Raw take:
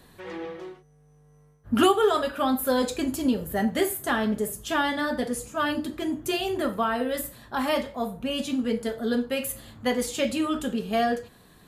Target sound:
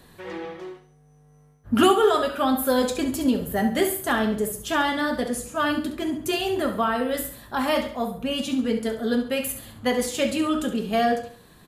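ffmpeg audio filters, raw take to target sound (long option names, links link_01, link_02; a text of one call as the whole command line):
ffmpeg -i in.wav -af "aecho=1:1:68|136|204|272:0.299|0.116|0.0454|0.0177,volume=2dB" out.wav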